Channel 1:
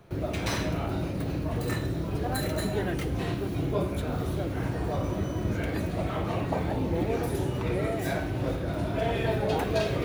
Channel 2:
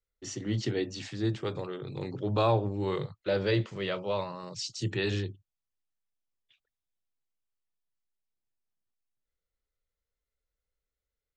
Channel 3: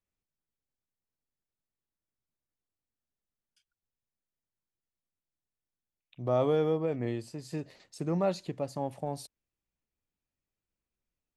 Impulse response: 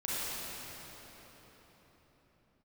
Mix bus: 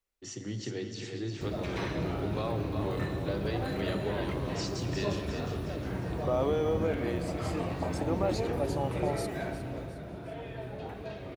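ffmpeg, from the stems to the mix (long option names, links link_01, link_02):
-filter_complex "[0:a]acrossover=split=3800[link_01][link_02];[link_02]acompressor=threshold=-53dB:ratio=4:attack=1:release=60[link_03];[link_01][link_03]amix=inputs=2:normalize=0,flanger=delay=4.3:depth=7.3:regen=73:speed=0.24:shape=sinusoidal,adelay=1300,volume=-2dB,afade=type=out:start_time=9.26:duration=0.74:silence=0.354813,asplit=2[link_04][link_05];[link_05]volume=-13.5dB[link_06];[1:a]acompressor=threshold=-31dB:ratio=3,volume=-4.5dB,asplit=3[link_07][link_08][link_09];[link_08]volume=-12dB[link_10];[link_09]volume=-5dB[link_11];[2:a]highpass=350,alimiter=level_in=0.5dB:limit=-24dB:level=0:latency=1,volume=-0.5dB,volume=2.5dB,asplit=2[link_12][link_13];[link_13]volume=-13dB[link_14];[3:a]atrim=start_sample=2205[link_15];[link_06][link_10]amix=inputs=2:normalize=0[link_16];[link_16][link_15]afir=irnorm=-1:irlink=0[link_17];[link_11][link_14]amix=inputs=2:normalize=0,aecho=0:1:358|716|1074|1432|1790|2148|2506:1|0.48|0.23|0.111|0.0531|0.0255|0.0122[link_18];[link_04][link_07][link_12][link_17][link_18]amix=inputs=5:normalize=0"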